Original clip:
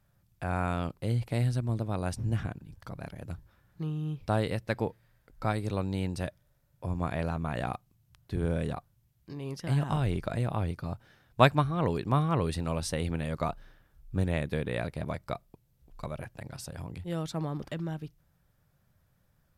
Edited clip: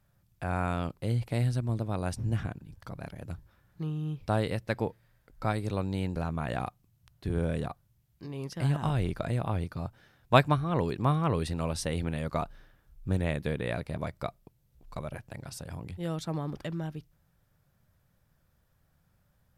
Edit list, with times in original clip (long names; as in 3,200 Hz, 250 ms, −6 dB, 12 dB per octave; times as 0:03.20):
0:06.16–0:07.23: remove